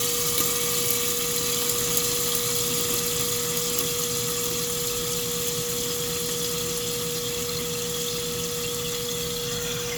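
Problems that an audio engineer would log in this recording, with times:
whine 480 Hz -31 dBFS

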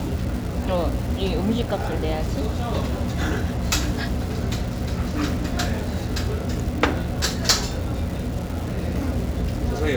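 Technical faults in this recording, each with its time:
crackle 570 per s -31 dBFS

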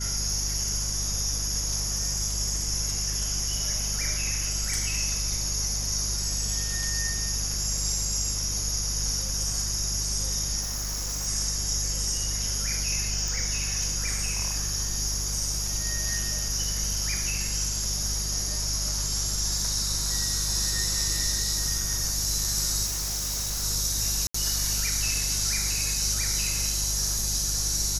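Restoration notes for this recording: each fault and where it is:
hum 50 Hz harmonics 4 -33 dBFS
10.61–11.28 s: clipped -27.5 dBFS
13.28 s: pop
22.85–23.64 s: clipped -26.5 dBFS
24.27–24.34 s: dropout 74 ms

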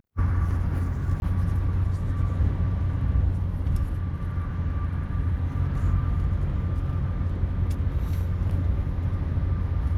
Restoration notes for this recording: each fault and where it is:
1.20–1.22 s: dropout 21 ms

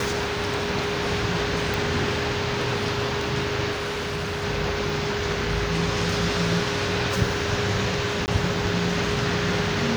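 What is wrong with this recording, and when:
whine 410 Hz -29 dBFS
1.74 s: pop
3.71–4.45 s: clipped -24.5 dBFS
8.26–8.28 s: dropout 19 ms

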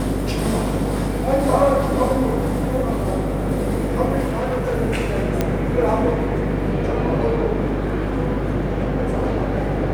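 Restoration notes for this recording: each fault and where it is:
buzz 50 Hz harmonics 16 -25 dBFS
4.26–4.75 s: clipped -18.5 dBFS
5.41 s: pop -6 dBFS

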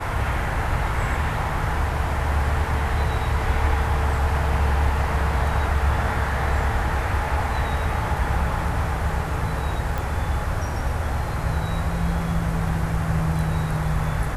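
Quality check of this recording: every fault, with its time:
9.98 s: pop

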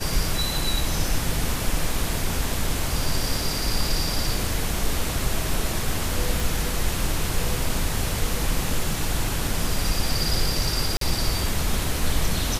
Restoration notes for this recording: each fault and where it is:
6.40 s: pop
10.97–11.01 s: dropout 43 ms

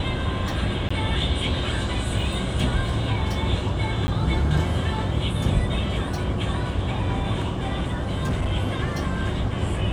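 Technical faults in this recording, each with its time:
0.89–0.91 s: dropout 15 ms
4.07–4.08 s: dropout 10 ms
7.93–8.53 s: clipped -19.5 dBFS

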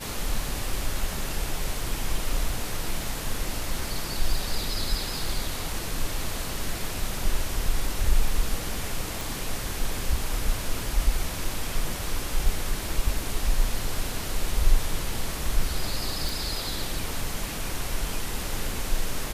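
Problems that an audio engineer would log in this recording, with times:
9.21 s: pop
16.29 s: pop

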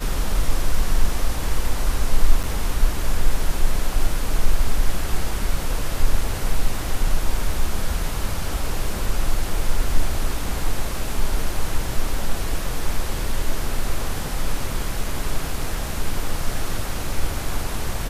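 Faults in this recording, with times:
2.43–2.44 s: dropout 7.6 ms

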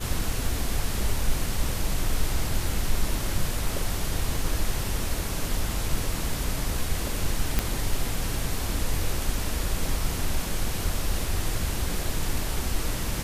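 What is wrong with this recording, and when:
7.59 s: pop -7 dBFS

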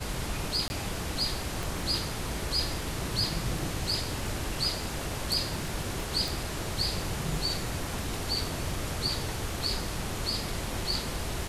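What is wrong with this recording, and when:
crackle 20 per s -37 dBFS
0.68–0.70 s: dropout 20 ms
1.63 s: pop
6.28 s: pop

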